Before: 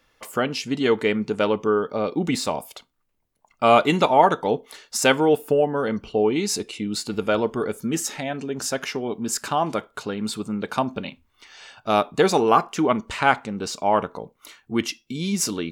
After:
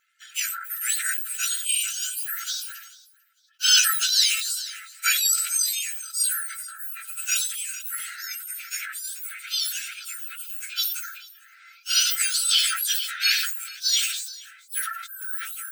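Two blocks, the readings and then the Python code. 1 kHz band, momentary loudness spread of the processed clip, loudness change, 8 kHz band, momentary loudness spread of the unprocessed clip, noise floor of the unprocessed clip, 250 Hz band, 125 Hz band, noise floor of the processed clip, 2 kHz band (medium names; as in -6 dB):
-17.0 dB, 14 LU, -0.5 dB, +9.0 dB, 12 LU, -69 dBFS, under -40 dB, under -40 dB, -55 dBFS, -0.5 dB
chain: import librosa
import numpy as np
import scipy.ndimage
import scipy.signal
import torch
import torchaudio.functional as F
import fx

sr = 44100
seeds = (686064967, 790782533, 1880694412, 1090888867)

p1 = fx.octave_mirror(x, sr, pivot_hz=1900.0)
p2 = fx.brickwall_highpass(p1, sr, low_hz=1300.0)
p3 = p2 + fx.echo_feedback(p2, sr, ms=446, feedback_pct=19, wet_db=-20.5, dry=0)
p4 = fx.dynamic_eq(p3, sr, hz=4100.0, q=1.5, threshold_db=-33.0, ratio=4.0, max_db=3)
y = fx.sustainer(p4, sr, db_per_s=49.0)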